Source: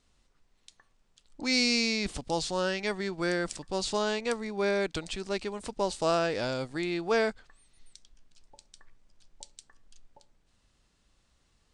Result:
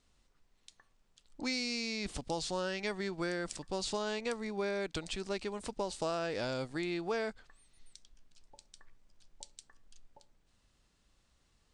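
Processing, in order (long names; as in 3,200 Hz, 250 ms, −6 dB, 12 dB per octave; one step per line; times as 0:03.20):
downward compressor 6 to 1, threshold −29 dBFS, peak gain reduction 8.5 dB
level −2.5 dB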